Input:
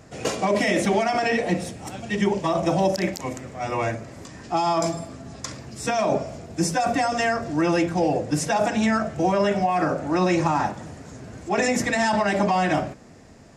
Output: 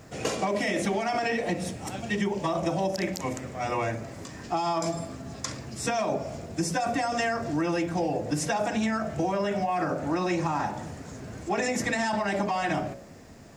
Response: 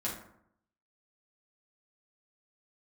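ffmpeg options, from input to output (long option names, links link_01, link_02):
-af "bandreject=frequency=61.34:width_type=h:width=4,bandreject=frequency=122.68:width_type=h:width=4,bandreject=frequency=184.02:width_type=h:width=4,bandreject=frequency=245.36:width_type=h:width=4,bandreject=frequency=306.7:width_type=h:width=4,bandreject=frequency=368.04:width_type=h:width=4,bandreject=frequency=429.38:width_type=h:width=4,bandreject=frequency=490.72:width_type=h:width=4,bandreject=frequency=552.06:width_type=h:width=4,bandreject=frequency=613.4:width_type=h:width=4,bandreject=frequency=674.74:width_type=h:width=4,bandreject=frequency=736.08:width_type=h:width=4,bandreject=frequency=797.42:width_type=h:width=4,bandreject=frequency=858.76:width_type=h:width=4,bandreject=frequency=920.1:width_type=h:width=4,acompressor=threshold=-24dB:ratio=6,acrusher=bits=10:mix=0:aa=0.000001"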